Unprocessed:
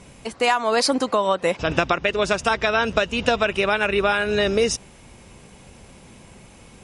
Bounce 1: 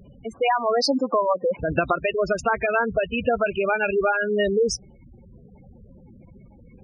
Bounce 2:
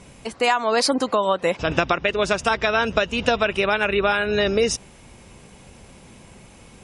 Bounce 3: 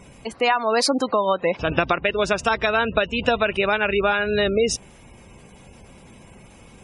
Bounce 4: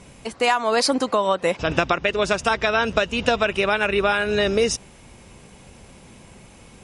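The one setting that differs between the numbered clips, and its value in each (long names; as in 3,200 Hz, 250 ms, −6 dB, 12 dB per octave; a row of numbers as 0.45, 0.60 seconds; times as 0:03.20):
gate on every frequency bin, under each frame's peak: −10, −40, −25, −60 decibels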